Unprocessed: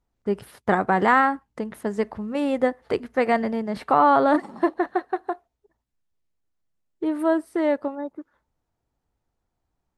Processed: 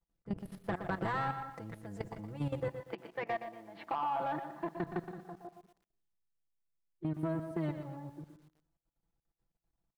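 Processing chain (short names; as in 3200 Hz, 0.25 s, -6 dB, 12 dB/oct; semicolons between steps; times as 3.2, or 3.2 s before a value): octaver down 1 oct, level +3 dB; comb 6 ms, depth 82%; digital reverb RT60 0.53 s, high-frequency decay 0.5×, pre-delay 0.1 s, DRR 14.5 dB; level quantiser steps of 18 dB; 2.68–4.77 speaker cabinet 370–3400 Hz, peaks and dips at 480 Hz -9 dB, 890 Hz +4 dB, 1300 Hz -5 dB; compressor, threshold -21 dBFS, peak gain reduction 6.5 dB; soft clip -18 dBFS, distortion -17 dB; lo-fi delay 0.119 s, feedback 35%, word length 9-bit, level -9 dB; gain -8.5 dB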